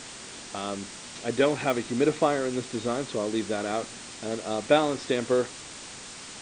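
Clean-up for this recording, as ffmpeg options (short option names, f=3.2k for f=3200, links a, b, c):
-af "adeclick=t=4,bandreject=f=7.1k:w=30,afwtdn=0.011"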